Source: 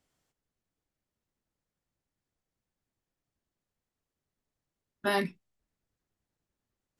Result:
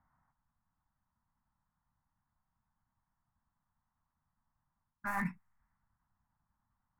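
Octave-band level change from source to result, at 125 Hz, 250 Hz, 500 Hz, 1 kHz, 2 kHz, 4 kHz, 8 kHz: -1.0 dB, -4.0 dB, -22.0 dB, -5.0 dB, -5.0 dB, -26.5 dB, -8.0 dB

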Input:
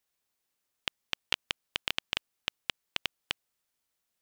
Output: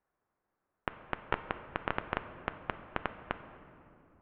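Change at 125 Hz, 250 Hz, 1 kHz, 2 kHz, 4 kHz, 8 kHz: +8.5 dB, +8.5 dB, +8.0 dB, -2.5 dB, -17.5 dB, under -30 dB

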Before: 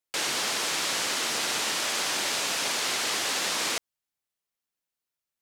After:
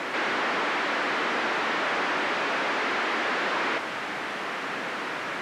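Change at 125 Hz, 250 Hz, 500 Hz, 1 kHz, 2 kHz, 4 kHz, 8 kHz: +3.5 dB, +8.0 dB, +7.0 dB, +7.5 dB, +5.5 dB, -5.5 dB, -17.5 dB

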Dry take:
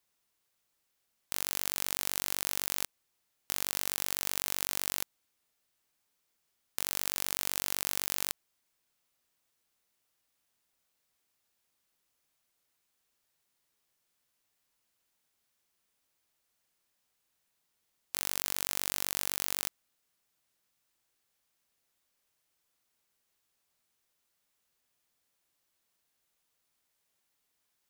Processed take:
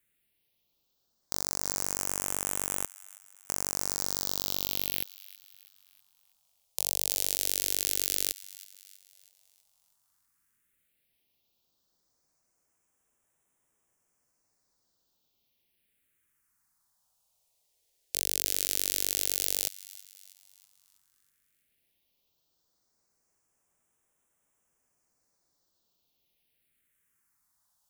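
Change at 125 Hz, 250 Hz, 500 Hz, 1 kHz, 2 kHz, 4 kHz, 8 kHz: +4.0 dB, +4.0 dB, +4.5 dB, 0.0 dB, -3.0 dB, +3.0 dB, +4.5 dB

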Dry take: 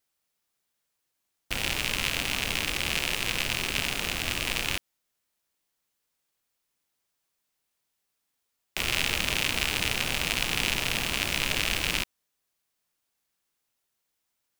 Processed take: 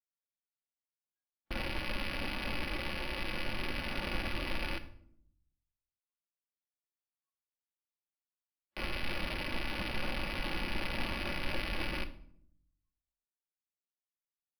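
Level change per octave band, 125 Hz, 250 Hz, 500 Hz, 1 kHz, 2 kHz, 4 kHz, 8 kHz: -5.0 dB, -2.5 dB, -3.5 dB, -5.5 dB, -9.5 dB, -13.0 dB, -24.0 dB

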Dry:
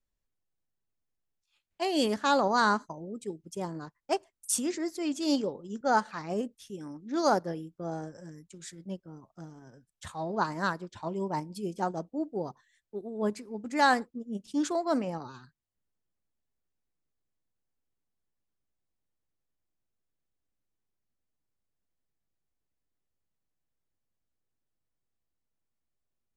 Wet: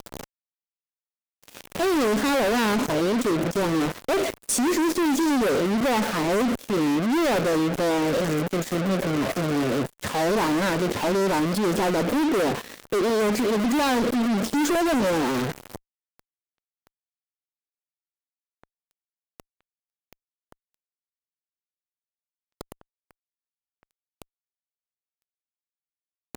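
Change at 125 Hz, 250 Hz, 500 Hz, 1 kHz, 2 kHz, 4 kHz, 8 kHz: +12.0 dB, +10.5 dB, +10.0 dB, +4.0 dB, +7.0 dB, +8.5 dB, +7.5 dB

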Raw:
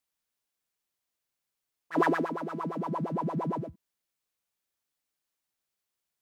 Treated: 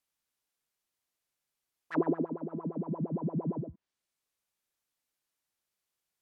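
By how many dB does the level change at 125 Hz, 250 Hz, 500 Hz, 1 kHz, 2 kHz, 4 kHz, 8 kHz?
0.0 dB, -0.5 dB, -3.0 dB, -11.5 dB, -12.0 dB, under -10 dB, no reading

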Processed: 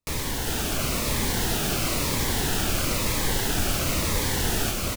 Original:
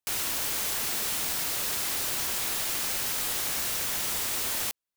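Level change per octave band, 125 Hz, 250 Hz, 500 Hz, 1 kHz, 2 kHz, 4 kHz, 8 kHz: +20.0 dB, +16.0 dB, +11.5 dB, +7.0 dB, +5.0 dB, +3.5 dB, +1.5 dB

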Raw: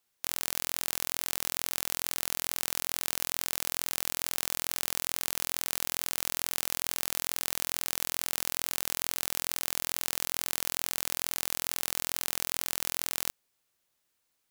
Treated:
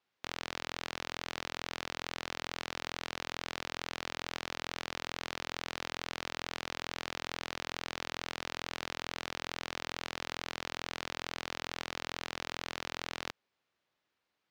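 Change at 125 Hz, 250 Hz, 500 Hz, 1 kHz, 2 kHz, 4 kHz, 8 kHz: -1.5 dB, +0.5 dB, +1.0 dB, +1.0 dB, 0.0 dB, -4.0 dB, -16.5 dB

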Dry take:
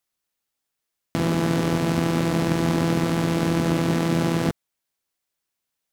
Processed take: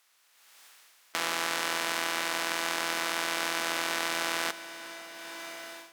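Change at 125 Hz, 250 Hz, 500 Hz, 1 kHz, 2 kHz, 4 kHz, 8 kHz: -33.0 dB, -21.5 dB, -11.5 dB, -3.0 dB, +2.5 dB, +2.5 dB, +2.5 dB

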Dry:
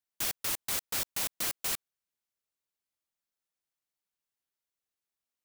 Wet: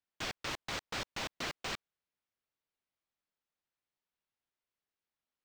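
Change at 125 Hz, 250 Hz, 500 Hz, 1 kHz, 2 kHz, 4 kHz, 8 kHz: +2.0 dB, +2.0 dB, +1.5 dB, +1.0 dB, 0.0 dB, -3.0 dB, -13.5 dB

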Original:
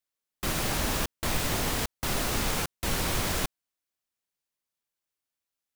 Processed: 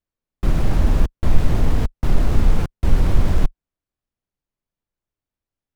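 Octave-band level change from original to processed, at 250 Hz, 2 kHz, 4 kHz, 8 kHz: +8.5 dB, -3.5 dB, -7.5 dB, -11.5 dB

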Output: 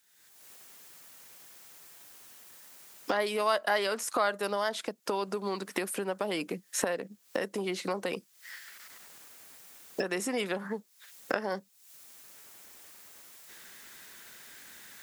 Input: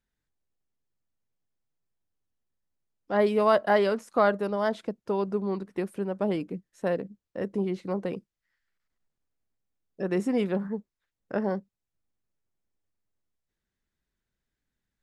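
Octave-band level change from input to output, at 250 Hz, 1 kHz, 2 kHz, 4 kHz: -8.0 dB, -2.5 dB, +1.5 dB, +6.5 dB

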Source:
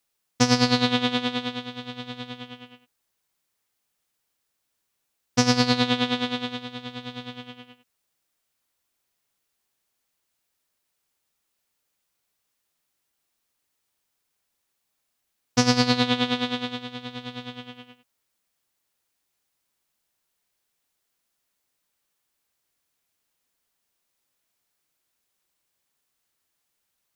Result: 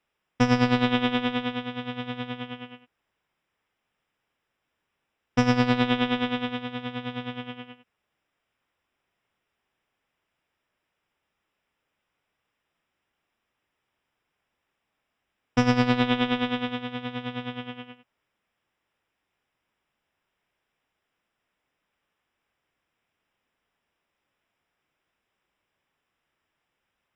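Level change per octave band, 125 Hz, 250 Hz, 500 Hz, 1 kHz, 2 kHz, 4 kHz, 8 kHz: +0.5 dB, +0.5 dB, 0.0 dB, 0.0 dB, 0.0 dB, -6.5 dB, -15.0 dB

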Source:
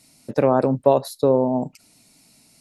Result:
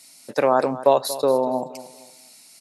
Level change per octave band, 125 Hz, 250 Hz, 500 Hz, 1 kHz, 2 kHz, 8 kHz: -11.5 dB, -6.0 dB, -1.0 dB, +2.5 dB, no reading, +7.5 dB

